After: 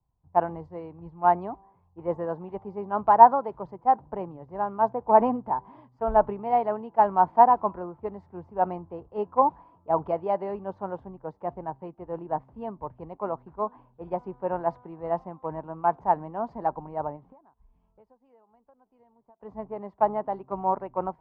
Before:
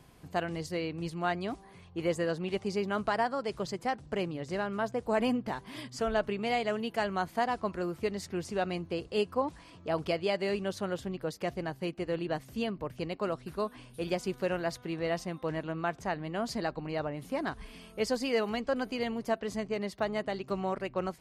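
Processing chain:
low-pass with resonance 910 Hz, resonance Q 5.6
0:17.16–0:19.40: downward compressor 20 to 1, threshold −39 dBFS, peak gain reduction 22.5 dB
multiband upward and downward expander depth 100%
level −1 dB

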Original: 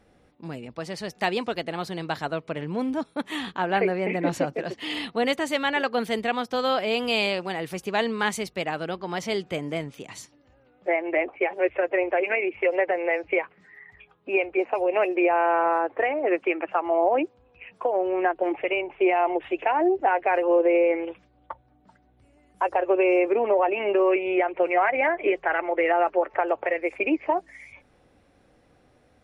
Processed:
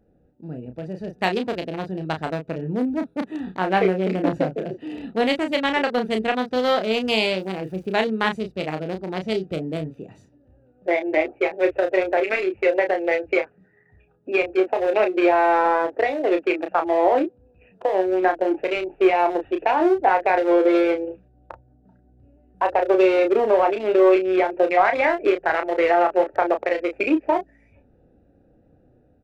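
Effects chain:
adaptive Wiener filter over 41 samples
automatic gain control gain up to 4.5 dB
0:07.38–0:07.95: surface crackle 360 per second −49 dBFS
double-tracking delay 32 ms −6.5 dB

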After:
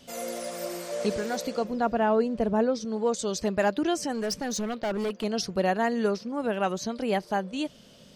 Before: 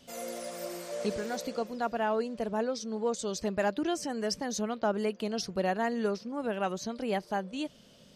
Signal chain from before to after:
0:01.64–0:02.85: spectral tilt −2 dB per octave
0:04.12–0:05.24: hard clipping −30 dBFS, distortion −16 dB
level +4.5 dB

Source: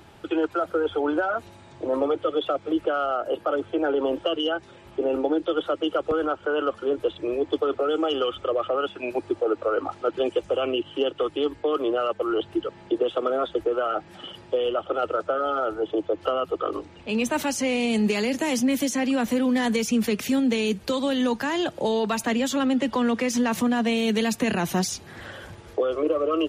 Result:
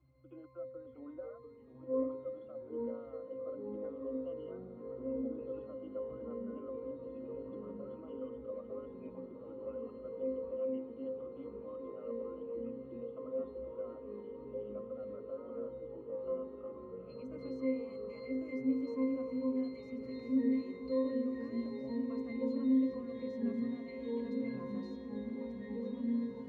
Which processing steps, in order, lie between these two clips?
fade-out on the ending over 1.38 s
resonances in every octave C, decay 0.61 s
on a send: feedback delay with all-pass diffusion 1,708 ms, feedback 59%, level −8 dB
on the sum: delay with pitch and tempo change per echo 599 ms, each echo −2 semitones, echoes 3, each echo −6 dB
level −1.5 dB

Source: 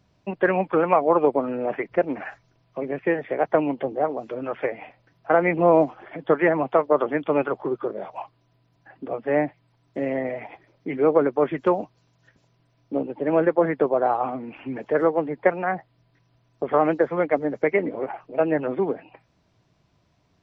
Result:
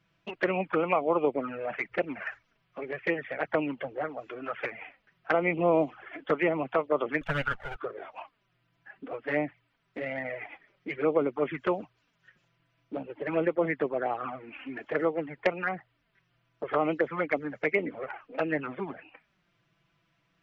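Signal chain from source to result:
0:07.21–0:07.76: lower of the sound and its delayed copy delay 1.4 ms
flat-topped bell 2,000 Hz +10 dB
flanger swept by the level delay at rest 6.1 ms, full sweep at −14.5 dBFS
level −6 dB

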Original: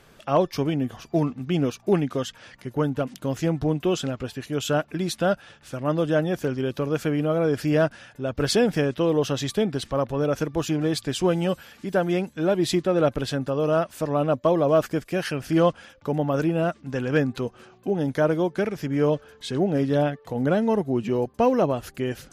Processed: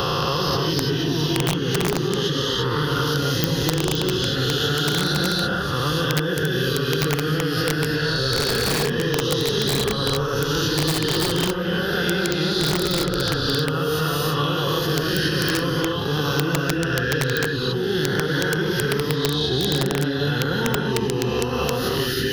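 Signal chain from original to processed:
peak hold with a rise ahead of every peak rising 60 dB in 1.28 s
octave-band graphic EQ 125/250/500/1,000/2,000/4,000 Hz +4/−9/+7/−7/+4/+4 dB
downward compressor 2.5 to 1, threshold −20 dBFS, peak gain reduction 6.5 dB
phaser with its sweep stopped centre 2,300 Hz, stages 6
reverb whose tail is shaped and stops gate 360 ms rising, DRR −3 dB
wrap-around overflow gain 14 dB
multiband upward and downward compressor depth 100%
level +1.5 dB

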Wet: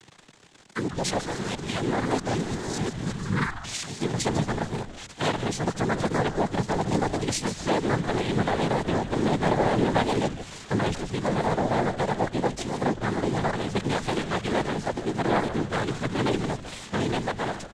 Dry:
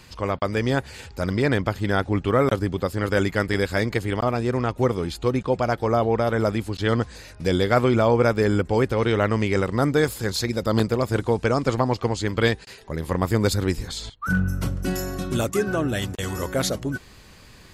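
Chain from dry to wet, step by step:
played backwards from end to start
mains-hum notches 50/100/150 Hz
in parallel at −1.5 dB: downward compressor, threshold −29 dBFS, peak gain reduction 14.5 dB
on the sum: bit-depth reduction 6 bits, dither none
asymmetric clip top −17.5 dBFS
cochlear-implant simulation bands 6
on a send: echo with shifted repeats 149 ms, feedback 37%, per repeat −130 Hz, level −11.5 dB
on the sum: wow of a warped record 45 rpm, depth 100 cents
level −4.5 dB

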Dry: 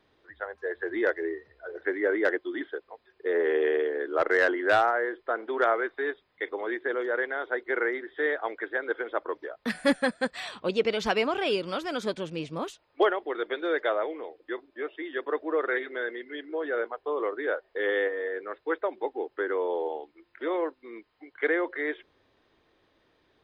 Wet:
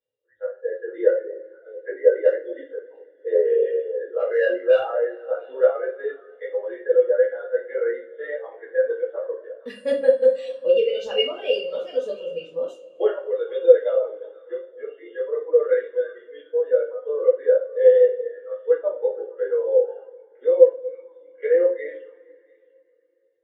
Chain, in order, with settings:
in parallel at −1 dB: brickwall limiter −19.5 dBFS, peak gain reduction 7 dB
on the sum: hollow resonant body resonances 520/2,800 Hz, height 16 dB, ringing for 40 ms
on a send: echo through a band-pass that steps 232 ms, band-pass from 450 Hz, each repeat 1.4 octaves, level −9 dB
on the sum: reverb reduction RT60 1.2 s
high-shelf EQ 4,000 Hz +12 dB
coupled-rooms reverb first 0.44 s, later 4.5 s, from −21 dB, DRR −6 dB
every bin expanded away from the loudest bin 1.5 to 1
level −9 dB

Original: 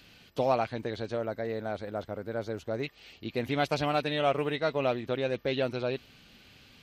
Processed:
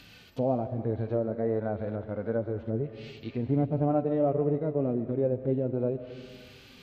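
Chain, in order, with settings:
phase shifter 1.1 Hz, delay 4.9 ms, feedback 24%
treble cut that deepens with the level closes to 510 Hz, closed at −27.5 dBFS
harmonic and percussive parts rebalanced percussive −15 dB
on a send: convolution reverb RT60 1.7 s, pre-delay 88 ms, DRR 11.5 dB
on the sum: level +7 dB

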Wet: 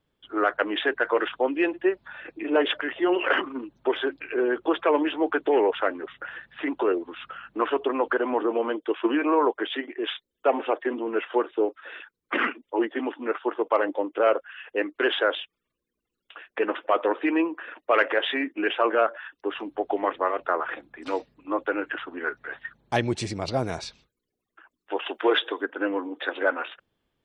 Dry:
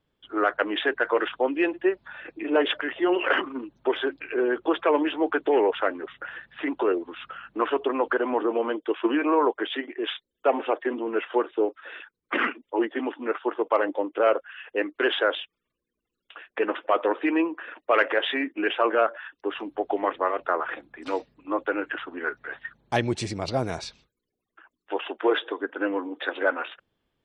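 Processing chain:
0:25.06–0:25.66: high-shelf EQ 2,400 Hz +9.5 dB

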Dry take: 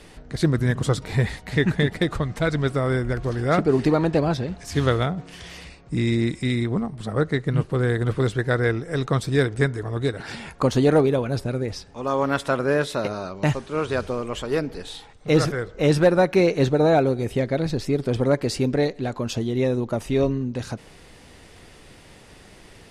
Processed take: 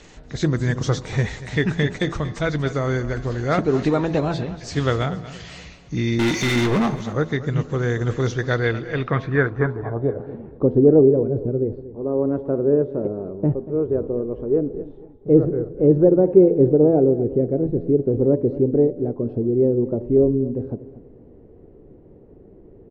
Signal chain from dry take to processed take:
hearing-aid frequency compression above 3,300 Hz 1.5 to 1
low-pass filter sweep 8,600 Hz → 400 Hz, 0:08.10–0:10.41
0:06.19–0:06.96: mid-hump overdrive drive 32 dB, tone 2,500 Hz, clips at −12 dBFS
hum removal 83.7 Hz, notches 13
on a send: repeating echo 236 ms, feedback 34%, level −15.5 dB

